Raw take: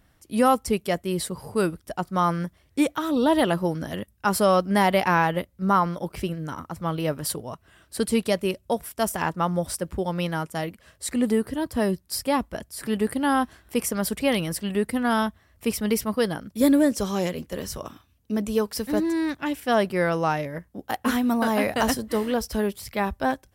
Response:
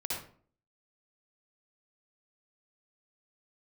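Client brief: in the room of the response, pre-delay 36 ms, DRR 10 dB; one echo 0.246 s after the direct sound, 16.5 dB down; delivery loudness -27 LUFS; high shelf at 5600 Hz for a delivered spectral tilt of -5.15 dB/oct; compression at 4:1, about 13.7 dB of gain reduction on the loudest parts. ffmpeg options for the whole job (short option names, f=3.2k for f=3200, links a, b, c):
-filter_complex "[0:a]highshelf=f=5.6k:g=-5.5,acompressor=threshold=-32dB:ratio=4,aecho=1:1:246:0.15,asplit=2[a][b];[1:a]atrim=start_sample=2205,adelay=36[c];[b][c]afir=irnorm=-1:irlink=0,volume=-13.5dB[d];[a][d]amix=inputs=2:normalize=0,volume=8dB"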